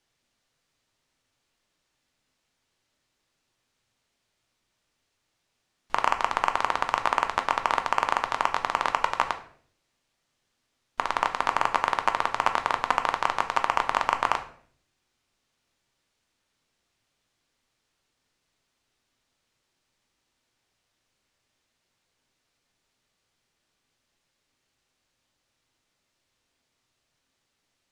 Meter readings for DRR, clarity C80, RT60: 6.5 dB, 16.0 dB, 0.55 s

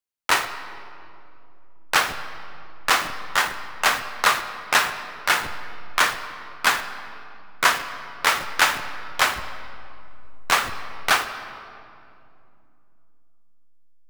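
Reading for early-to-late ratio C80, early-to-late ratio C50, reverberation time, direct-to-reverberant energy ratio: 11.0 dB, 10.0 dB, 2.7 s, 8.5 dB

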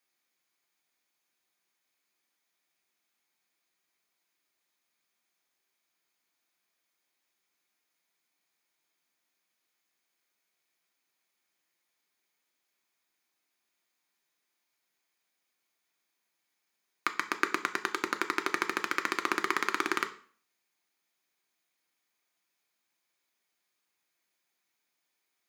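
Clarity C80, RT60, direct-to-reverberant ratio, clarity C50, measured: 19.0 dB, 0.45 s, 6.5 dB, 15.0 dB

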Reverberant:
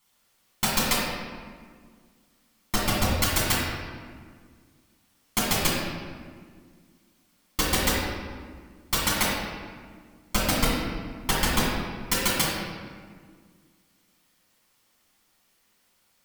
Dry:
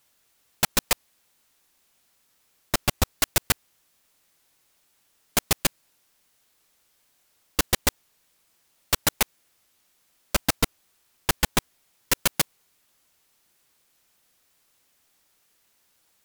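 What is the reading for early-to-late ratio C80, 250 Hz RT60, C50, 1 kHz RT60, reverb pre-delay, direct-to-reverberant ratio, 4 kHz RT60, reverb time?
1.0 dB, 2.5 s, -1.5 dB, 1.7 s, 4 ms, -6.0 dB, 1.1 s, 1.8 s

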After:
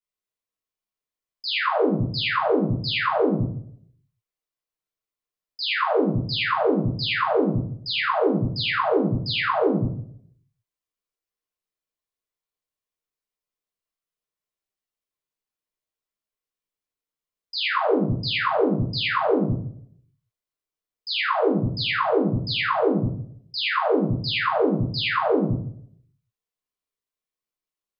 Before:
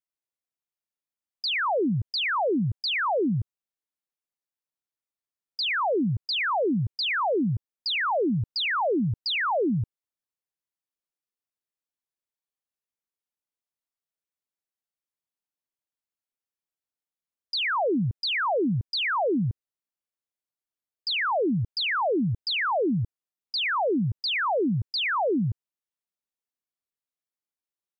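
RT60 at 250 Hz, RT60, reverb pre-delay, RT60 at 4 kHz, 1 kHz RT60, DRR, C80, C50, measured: 0.65 s, 0.65 s, 3 ms, 0.45 s, 0.60 s, -11.5 dB, 9.0 dB, 5.0 dB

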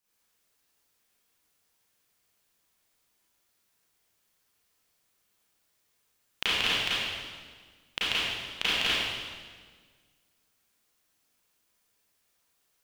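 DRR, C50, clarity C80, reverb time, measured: -10.5 dB, -4.5 dB, -1.0 dB, 1.6 s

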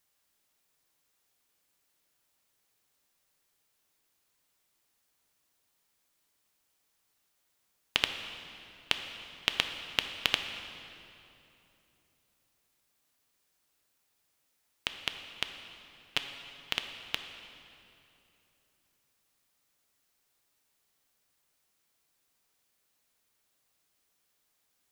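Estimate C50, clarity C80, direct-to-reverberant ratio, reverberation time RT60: 7.0 dB, 8.0 dB, 6.0 dB, 3.0 s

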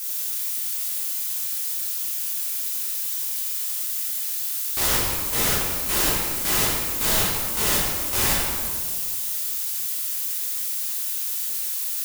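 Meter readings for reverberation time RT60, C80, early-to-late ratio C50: 1.8 s, 1.0 dB, -1.0 dB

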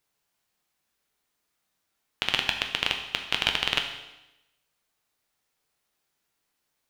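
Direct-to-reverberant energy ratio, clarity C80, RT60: 3.5 dB, 9.5 dB, 0.95 s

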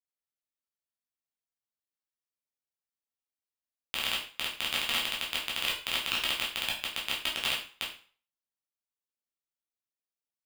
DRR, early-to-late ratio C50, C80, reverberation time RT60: -5.0 dB, 7.0 dB, 11.0 dB, 0.40 s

